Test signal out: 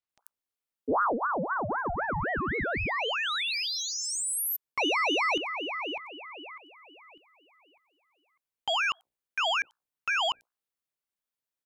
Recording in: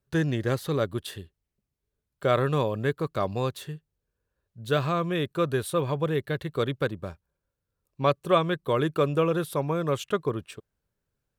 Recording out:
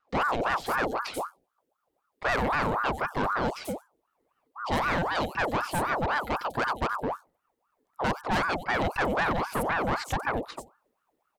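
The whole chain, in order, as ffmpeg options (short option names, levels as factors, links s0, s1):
-filter_complex "[0:a]equalizer=f=89:t=o:w=0.61:g=10,bandreject=f=60:t=h:w=6,bandreject=f=120:t=h:w=6,bandreject=f=180:t=h:w=6,bandreject=f=240:t=h:w=6,bandreject=f=300:t=h:w=6,bandreject=f=360:t=h:w=6,bandreject=f=420:t=h:w=6,acrossover=split=5700[s0][s1];[s1]adelay=90[s2];[s0][s2]amix=inputs=2:normalize=0,acontrast=42,asoftclip=type=tanh:threshold=0.1,aeval=exprs='val(0)*sin(2*PI*840*n/s+840*0.6/3.9*sin(2*PI*3.9*n/s))':c=same"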